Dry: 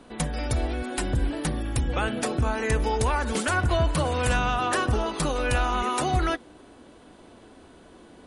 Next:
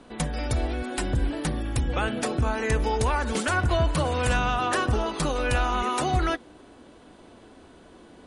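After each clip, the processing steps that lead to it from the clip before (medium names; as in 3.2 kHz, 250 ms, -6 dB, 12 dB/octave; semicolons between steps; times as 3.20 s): low-pass 10 kHz 12 dB/octave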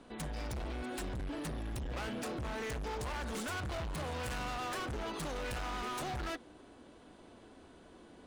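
overload inside the chain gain 30.5 dB; trim -6.5 dB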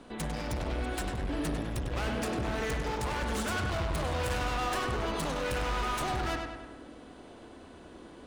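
filtered feedback delay 99 ms, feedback 57%, low-pass 4.6 kHz, level -4 dB; trim +5 dB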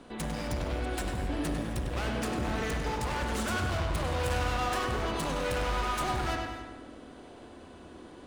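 gated-style reverb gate 290 ms flat, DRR 8.5 dB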